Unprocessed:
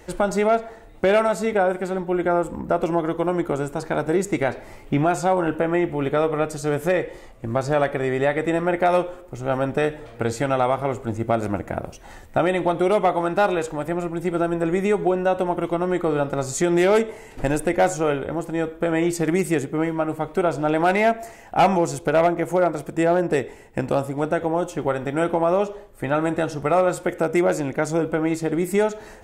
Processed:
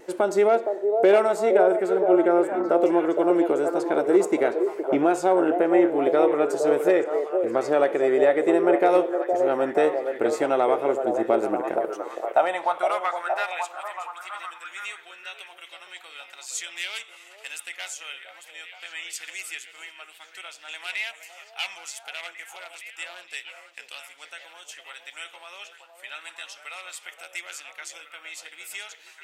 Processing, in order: high-pass sweep 360 Hz -> 2900 Hz, 11.71–13.88; wow and flutter 23 cents; delay with a stepping band-pass 0.465 s, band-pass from 530 Hz, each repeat 0.7 oct, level -3 dB; gain -4 dB

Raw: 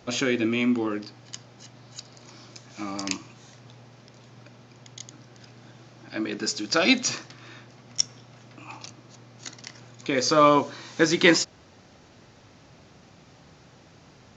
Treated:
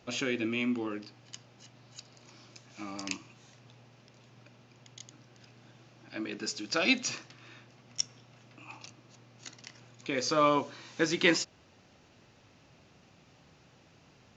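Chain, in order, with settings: bell 2700 Hz +5.5 dB 0.37 oct; gain -8 dB

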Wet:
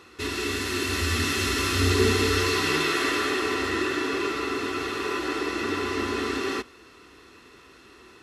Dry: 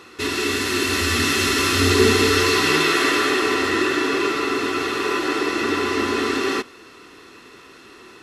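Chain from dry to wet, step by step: bell 61 Hz +11.5 dB 1 oct; gain -6.5 dB

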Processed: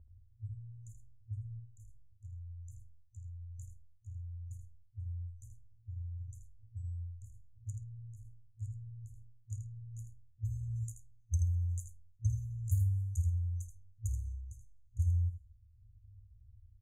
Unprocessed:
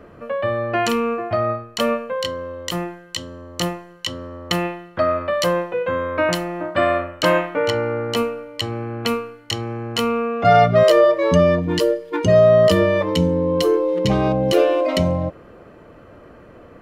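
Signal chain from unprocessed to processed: on a send: flutter echo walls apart 9 m, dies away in 0.2 s; on the sum: dynamic EQ 160 Hz, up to +4 dB, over -33 dBFS, Q 1.8; FFT band-reject 110–6100 Hz; bell 3400 Hz -10.5 dB 1.8 oct; low-pass opened by the level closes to 1100 Hz, open at -27.5 dBFS; echo 80 ms -8.5 dB; gain -5 dB

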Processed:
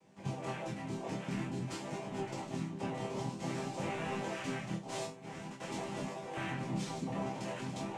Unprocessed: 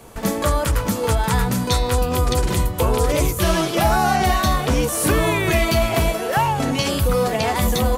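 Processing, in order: low shelf 270 Hz +11 dB; 4.75–5.6 negative-ratio compressor -21 dBFS, ratio -1; noise vocoder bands 4; resonator bank C3 major, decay 0.29 s; chorus 0.49 Hz, delay 20 ms, depth 6.1 ms; gain -5.5 dB

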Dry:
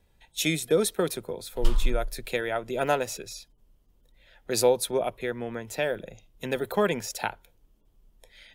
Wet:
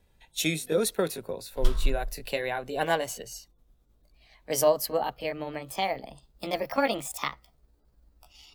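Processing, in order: gliding pitch shift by +6.5 st starting unshifted

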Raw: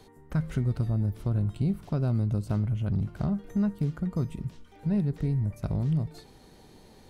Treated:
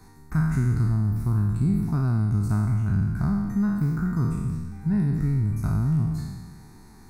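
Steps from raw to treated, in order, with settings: spectral trails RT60 1.45 s; fixed phaser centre 1300 Hz, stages 4; gain +4 dB

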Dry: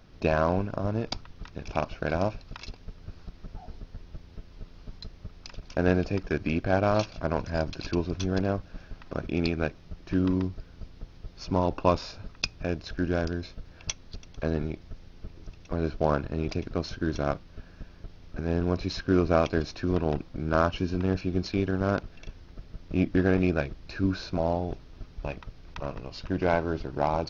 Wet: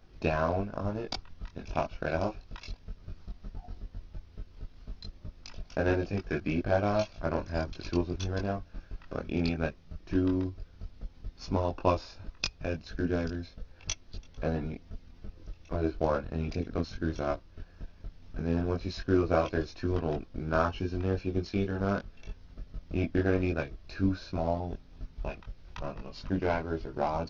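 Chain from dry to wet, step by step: transient shaper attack +3 dB, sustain -3 dB; chorus voices 6, 0.14 Hz, delay 22 ms, depth 3 ms; gain -1.5 dB

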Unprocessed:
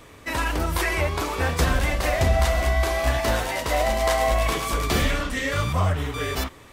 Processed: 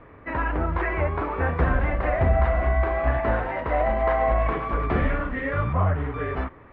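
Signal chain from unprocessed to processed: LPF 1900 Hz 24 dB/oct

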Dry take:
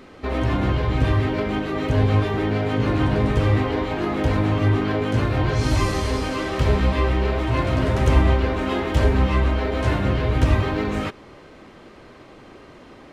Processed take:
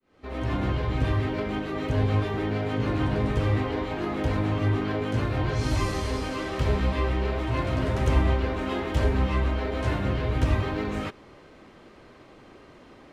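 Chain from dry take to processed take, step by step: opening faded in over 0.54 s; gain -5.5 dB

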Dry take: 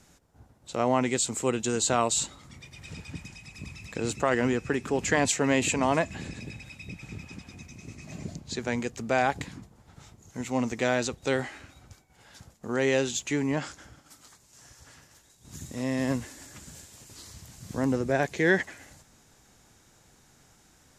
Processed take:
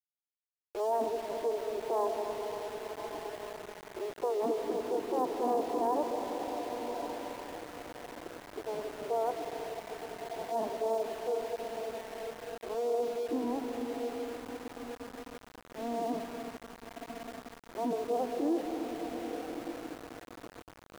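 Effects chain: Chebyshev band-pass 190–1000 Hz, order 4; formant-preserving pitch shift +10 st; diffused feedback echo 1.185 s, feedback 44%, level -8.5 dB; on a send at -4 dB: reverb RT60 5.1 s, pre-delay 95 ms; on the sum: sample gate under -36.5 dBFS; gain -5 dB

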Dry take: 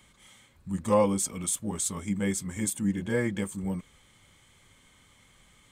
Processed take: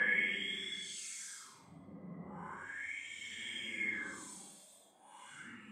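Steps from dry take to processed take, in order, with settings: Paulstretch 10×, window 0.05 s, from 2.25; wah 0.37 Hz 630–3500 Hz, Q 4.7; gain +9 dB

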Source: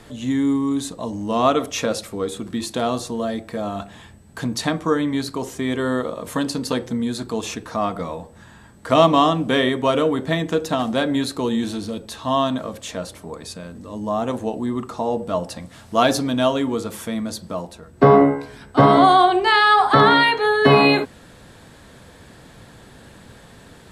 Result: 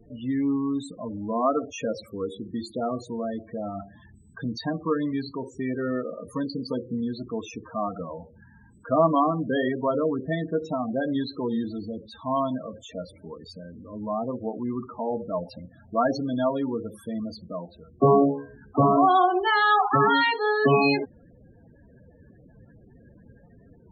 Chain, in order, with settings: loudest bins only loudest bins 16; vibrato 0.44 Hz 6.2 cents; gain -5.5 dB

